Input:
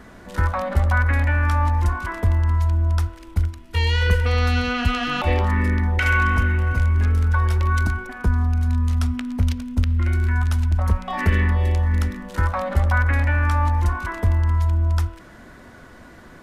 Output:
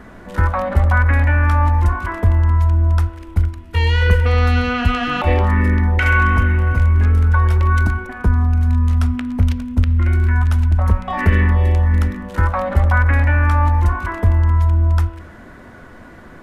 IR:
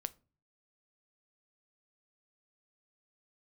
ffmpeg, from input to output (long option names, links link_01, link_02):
-filter_complex "[0:a]asplit=2[link_01][link_02];[1:a]atrim=start_sample=2205,asetrate=31752,aresample=44100,lowpass=3200[link_03];[link_02][link_03]afir=irnorm=-1:irlink=0,volume=-0.5dB[link_04];[link_01][link_04]amix=inputs=2:normalize=0,volume=-1dB"